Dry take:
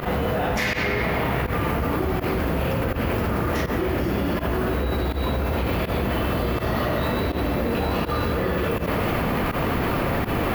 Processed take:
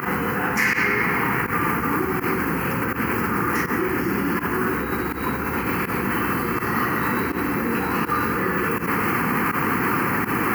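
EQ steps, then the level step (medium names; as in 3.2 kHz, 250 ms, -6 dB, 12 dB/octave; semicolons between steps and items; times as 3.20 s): Bessel high-pass 260 Hz, order 2; static phaser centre 1.5 kHz, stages 4; +7.5 dB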